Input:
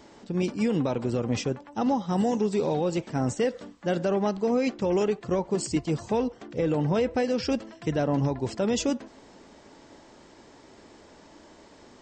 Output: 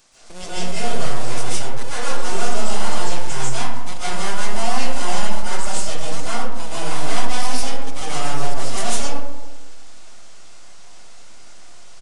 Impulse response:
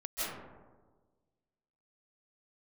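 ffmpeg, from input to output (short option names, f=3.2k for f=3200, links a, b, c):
-filter_complex "[0:a]asplit=2[a][b];[b]acrusher=samples=22:mix=1:aa=0.000001,volume=-8dB[c];[a][c]amix=inputs=2:normalize=0,aeval=exprs='abs(val(0))':c=same,aresample=22050,aresample=44100,crystalizer=i=9.5:c=0[d];[1:a]atrim=start_sample=2205,asetrate=48510,aresample=44100[e];[d][e]afir=irnorm=-1:irlink=0,volume=-7dB"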